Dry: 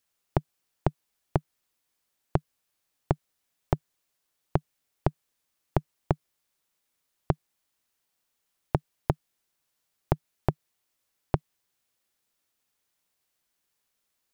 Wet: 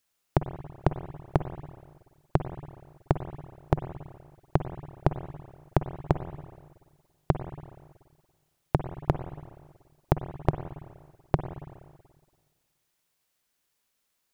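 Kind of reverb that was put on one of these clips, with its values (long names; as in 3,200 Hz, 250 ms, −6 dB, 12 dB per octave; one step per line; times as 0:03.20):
spring reverb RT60 1.6 s, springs 47/55/59 ms, chirp 70 ms, DRR 9 dB
level +1.5 dB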